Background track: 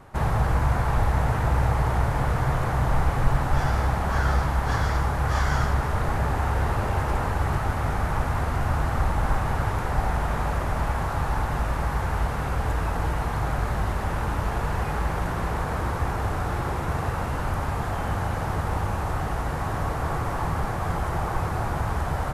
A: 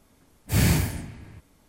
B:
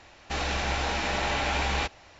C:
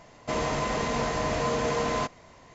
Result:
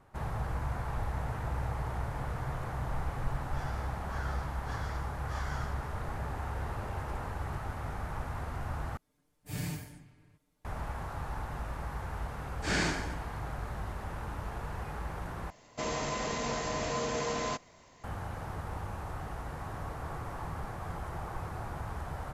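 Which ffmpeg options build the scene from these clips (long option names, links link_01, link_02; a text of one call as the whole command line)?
ffmpeg -i bed.wav -i cue0.wav -i cue1.wav -i cue2.wav -filter_complex "[1:a]asplit=2[link_01][link_02];[0:a]volume=-12.5dB[link_03];[link_01]aecho=1:1:6.7:0.71[link_04];[link_02]highpass=frequency=210:width=0.5412,highpass=frequency=210:width=1.3066,equalizer=frequency=230:width_type=q:width=4:gain=-7,equalizer=frequency=1500:width_type=q:width=4:gain=9,equalizer=frequency=2600:width_type=q:width=4:gain=-3,lowpass=frequency=6700:width=0.5412,lowpass=frequency=6700:width=1.3066[link_05];[3:a]highshelf=frequency=5400:gain=9[link_06];[link_03]asplit=3[link_07][link_08][link_09];[link_07]atrim=end=8.974[link_10];[link_04]atrim=end=1.68,asetpts=PTS-STARTPTS,volume=-18dB[link_11];[link_08]atrim=start=10.646:end=15.504[link_12];[link_06]atrim=end=2.54,asetpts=PTS-STARTPTS,volume=-6.5dB[link_13];[link_09]atrim=start=18.036[link_14];[link_05]atrim=end=1.68,asetpts=PTS-STARTPTS,volume=-3.5dB,afade=type=in:duration=0.004:curve=hsin,afade=type=out:start_time=1.676:duration=0.004:curve=hsin,adelay=12130[link_15];[link_10][link_11]acrossfade=duration=0.004:curve1=hsin:curve2=hsin[link_16];[link_16][link_12]acrossfade=duration=0.004:curve1=hsin:curve2=hsin[link_17];[link_17][link_13]acrossfade=duration=0.004:curve1=hsin:curve2=hsin[link_18];[link_18][link_14]acrossfade=duration=0.004:curve1=hsin:curve2=hsin[link_19];[link_19][link_15]amix=inputs=2:normalize=0" out.wav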